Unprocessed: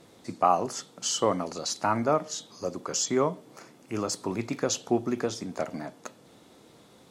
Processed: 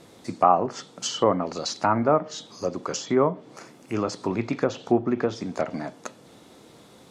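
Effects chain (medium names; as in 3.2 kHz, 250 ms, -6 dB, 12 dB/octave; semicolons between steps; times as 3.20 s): low-pass that closes with the level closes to 1.7 kHz, closed at -22.5 dBFS; trim +4.5 dB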